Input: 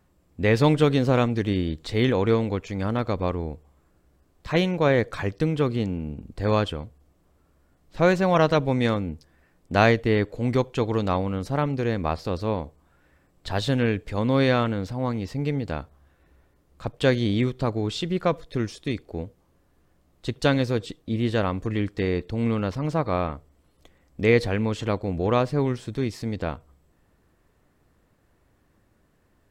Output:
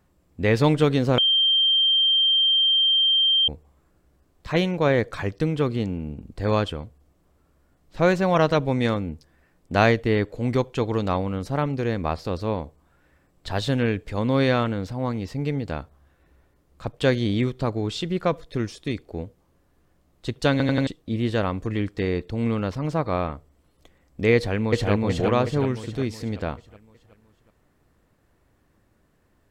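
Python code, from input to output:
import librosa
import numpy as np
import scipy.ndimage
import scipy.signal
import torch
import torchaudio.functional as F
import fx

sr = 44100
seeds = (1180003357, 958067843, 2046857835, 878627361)

y = fx.echo_throw(x, sr, start_s=24.35, length_s=0.56, ms=370, feedback_pct=50, wet_db=0.0)
y = fx.edit(y, sr, fx.bleep(start_s=1.18, length_s=2.3, hz=3160.0, db=-16.0),
    fx.stutter_over(start_s=20.51, slice_s=0.09, count=4), tone=tone)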